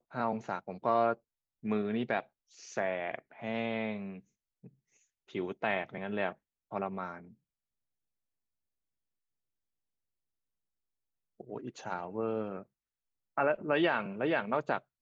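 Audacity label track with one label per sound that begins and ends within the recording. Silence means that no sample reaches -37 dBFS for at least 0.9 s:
5.350000	7.180000	sound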